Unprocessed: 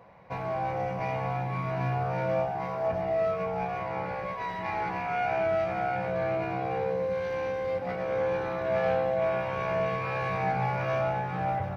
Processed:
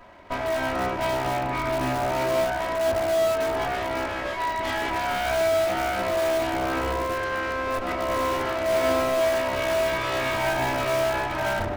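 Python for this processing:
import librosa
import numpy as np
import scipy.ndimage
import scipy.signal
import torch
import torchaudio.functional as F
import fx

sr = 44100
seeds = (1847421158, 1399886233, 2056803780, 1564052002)

p1 = fx.lower_of_two(x, sr, delay_ms=3.1)
p2 = fx.hum_notches(p1, sr, base_hz=60, count=6)
p3 = (np.mod(10.0 ** (27.0 / 20.0) * p2 + 1.0, 2.0) - 1.0) / 10.0 ** (27.0 / 20.0)
p4 = p2 + (p3 * librosa.db_to_amplitude(-10.0))
y = p4 * librosa.db_to_amplitude(5.5)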